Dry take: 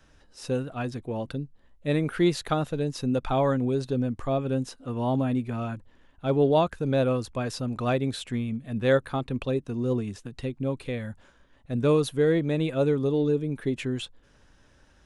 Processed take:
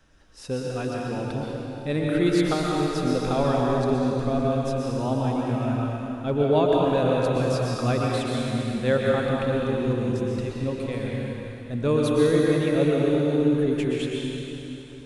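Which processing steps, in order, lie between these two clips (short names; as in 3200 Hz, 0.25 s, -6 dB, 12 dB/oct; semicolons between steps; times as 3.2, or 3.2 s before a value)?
plate-style reverb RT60 3.3 s, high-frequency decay 0.95×, pre-delay 0.105 s, DRR -3.5 dB; gain -1.5 dB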